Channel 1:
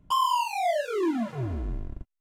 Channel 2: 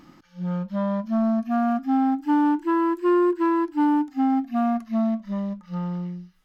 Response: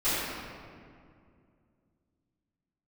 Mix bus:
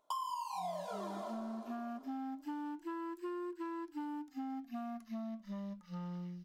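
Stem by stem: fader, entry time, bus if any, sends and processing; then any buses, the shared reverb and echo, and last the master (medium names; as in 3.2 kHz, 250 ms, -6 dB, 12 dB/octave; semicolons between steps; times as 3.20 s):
0.0 dB, 0.00 s, send -18 dB, echo send -17.5 dB, high-pass 580 Hz 24 dB/octave; high-order bell 2.1 kHz -13 dB 1.1 oct; vibrato 2.9 Hz 10 cents
-12.5 dB, 0.20 s, no send, no echo send, treble shelf 3.1 kHz +10.5 dB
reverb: on, RT60 2.3 s, pre-delay 3 ms
echo: feedback delay 536 ms, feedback 22%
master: compression 6:1, threshold -39 dBFS, peak gain reduction 18 dB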